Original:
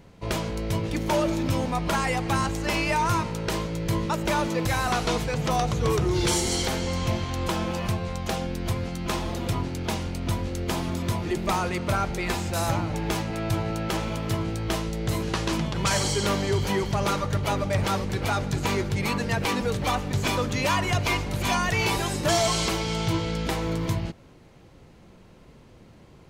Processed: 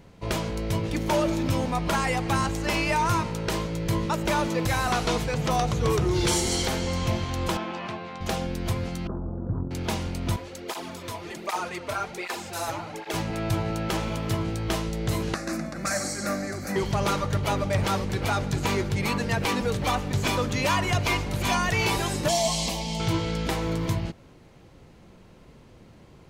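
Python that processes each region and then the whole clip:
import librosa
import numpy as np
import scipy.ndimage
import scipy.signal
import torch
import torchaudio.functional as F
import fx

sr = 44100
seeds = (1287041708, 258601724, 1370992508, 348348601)

y = fx.chain(x, sr, fx.bandpass_edges(low_hz=280.0, high_hz=3300.0),
    fx.peak_eq(hz=500.0, db=-9.5, octaves=0.23), at=(7.57, 8.21))
y = fx.chain(y, sr, fx.brickwall_lowpass(high_hz=1500.0),
    fx.peak_eq(hz=1100.0, db=-14.5, octaves=2.1),
    fx.doppler_dist(depth_ms=0.48), at=(9.07, 9.71))
y = fx.chain(y, sr, fx.bass_treble(bass_db=-14, treble_db=0),
    fx.flanger_cancel(hz=1.3, depth_ms=5.8), at=(10.36, 13.14))
y = fx.chain(y, sr, fx.highpass(hz=96.0, slope=12),
    fx.fixed_phaser(hz=630.0, stages=8), at=(15.34, 16.76))
y = fx.chain(y, sr, fx.fixed_phaser(hz=380.0, stages=6),
    fx.doubler(ms=17.0, db=-11.0), at=(22.28, 23.0))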